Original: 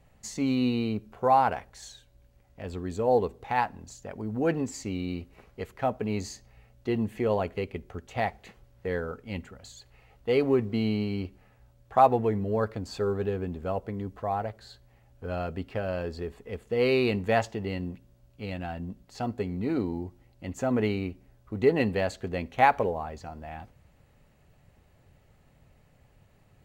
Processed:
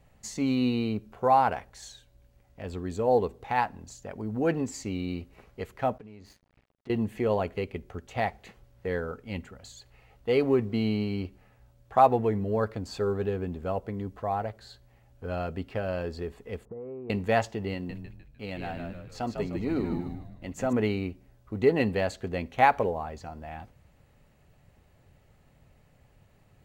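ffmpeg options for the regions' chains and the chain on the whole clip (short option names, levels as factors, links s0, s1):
-filter_complex "[0:a]asettb=1/sr,asplit=3[s0][s1][s2];[s0]atrim=end=5.984[s3];[s1]atrim=start=5.98:end=6.9,asetpts=PTS-STARTPTS,afade=t=in:d=0.004:c=qsin,afade=t=out:st=0.916:d=0.004:c=qsin,lowpass=3200,aeval=exprs='sgn(val(0))*max(abs(val(0))-0.00237,0)':c=same,acompressor=threshold=0.00708:ratio=16:attack=3.2:release=140:knee=1:detection=peak[s4];[s2]atrim=start=6.896[s5];[s3][s4]acrossfade=d=0.004:c1=hsin:c2=qsin[s6];[s6][s5]acrossfade=d=0.004:c1=qsin:c2=hsin,asettb=1/sr,asplit=3[s7][s8][s9];[s7]atrim=end=16.654[s10];[s8]atrim=start=16.65:end=17.1,asetpts=PTS-STARTPTS,afade=t=in:d=0.004:c=qsin,afade=t=out:st=0.446:d=0.004:c=qsin,lowpass=f=1100:w=0.5412,lowpass=f=1100:w=1.3066,acompressor=threshold=0.0141:ratio=10:attack=3.2:release=140:knee=1:detection=peak[s11];[s9]atrim=start=17.096[s12];[s10][s11]acrossfade=d=0.004:c1=hsin:c2=qsin[s13];[s13][s12]acrossfade=d=0.004:c1=qsin:c2=hsin,asettb=1/sr,asplit=3[s14][s15][s16];[s14]atrim=end=17.744[s17];[s15]atrim=start=17.74:end=20.73,asetpts=PTS-STARTPTS,afade=t=in:d=0.004:c=qsin,afade=t=out:st=2.986:d=0.004:c=qsin,lowshelf=f=87:g=-11.5,agate=range=0.316:threshold=0.00141:ratio=16:release=100:detection=peak,asplit=7[s18][s19][s20][s21][s22][s23][s24];[s19]adelay=151,afreqshift=-77,volume=0.562[s25];[s20]adelay=302,afreqshift=-154,volume=0.254[s26];[s21]adelay=453,afreqshift=-231,volume=0.114[s27];[s22]adelay=604,afreqshift=-308,volume=0.0513[s28];[s23]adelay=755,afreqshift=-385,volume=0.0232[s29];[s24]adelay=906,afreqshift=-462,volume=0.0104[s30];[s18][s25][s26][s27][s28][s29][s30]amix=inputs=7:normalize=0,atrim=end_sample=131859[s31];[s16]atrim=start=20.726[s32];[s17][s31]acrossfade=d=0.004:c1=hsin:c2=qsin[s33];[s33][s32]acrossfade=d=0.004:c1=qsin:c2=hsin"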